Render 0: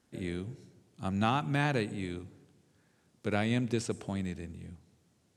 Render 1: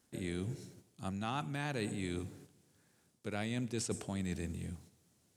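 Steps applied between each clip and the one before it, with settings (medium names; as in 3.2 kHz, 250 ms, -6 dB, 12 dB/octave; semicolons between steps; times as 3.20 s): gate -59 dBFS, range -7 dB; treble shelf 6.5 kHz +12 dB; reverse; compression 6:1, threshold -38 dBFS, peak gain reduction 15 dB; reverse; trim +3.5 dB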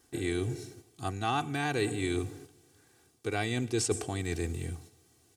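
comb 2.6 ms, depth 76%; trim +6 dB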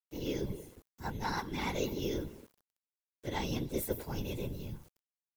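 frequency axis rescaled in octaves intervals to 117%; whisper effect; small samples zeroed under -56 dBFS; trim -2 dB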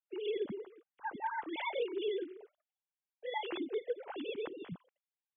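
formants replaced by sine waves; compression 2:1, threshold -36 dBFS, peak gain reduction 5.5 dB; trim +1 dB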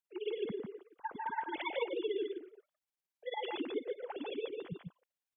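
tremolo 18 Hz, depth 90%; delay 145 ms -4 dB; trim +2.5 dB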